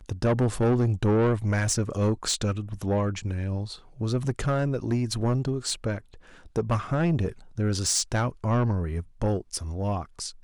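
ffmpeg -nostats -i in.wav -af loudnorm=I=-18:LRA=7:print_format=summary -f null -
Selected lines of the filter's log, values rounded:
Input Integrated:    -27.1 LUFS
Input True Peak:     -15.7 dBTP
Input LRA:             2.8 LU
Input Threshold:     -37.2 LUFS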